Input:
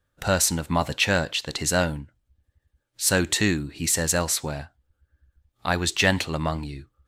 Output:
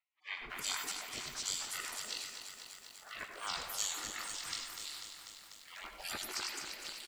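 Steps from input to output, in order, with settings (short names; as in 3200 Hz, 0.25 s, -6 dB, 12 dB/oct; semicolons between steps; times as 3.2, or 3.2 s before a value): trilling pitch shifter -9.5 st, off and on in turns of 0.541 s; high shelf 6200 Hz -5 dB; spectral gate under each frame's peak -30 dB weak; three bands offset in time mids, lows, highs 0.15/0.37 s, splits 630/2700 Hz; on a send at -7 dB: reverb RT60 0.30 s, pre-delay 72 ms; on the sum: lo-fi delay 0.246 s, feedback 80%, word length 11-bit, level -8 dB; gain +8 dB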